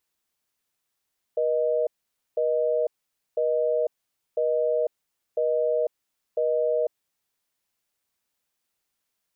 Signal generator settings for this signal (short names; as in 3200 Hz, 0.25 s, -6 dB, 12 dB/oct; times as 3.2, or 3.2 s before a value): call progress tone busy tone, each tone -23.5 dBFS 5.95 s